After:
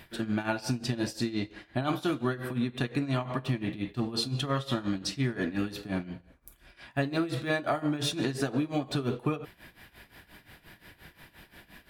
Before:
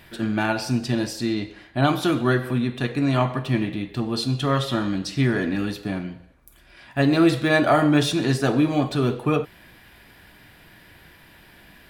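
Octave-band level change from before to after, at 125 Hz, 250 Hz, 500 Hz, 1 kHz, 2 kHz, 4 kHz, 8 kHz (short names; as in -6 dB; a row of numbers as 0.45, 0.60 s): -8.5, -9.0, -9.5, -10.0, -9.0, -6.0, -5.5 dB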